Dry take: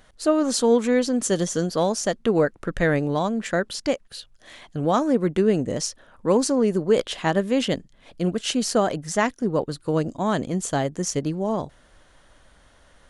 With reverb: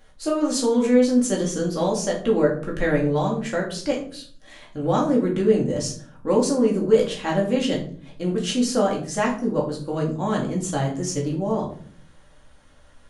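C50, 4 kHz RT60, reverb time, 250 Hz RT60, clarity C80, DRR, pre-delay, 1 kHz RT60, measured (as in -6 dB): 8.0 dB, 0.35 s, 0.50 s, 0.80 s, 13.0 dB, -2.5 dB, 4 ms, 0.45 s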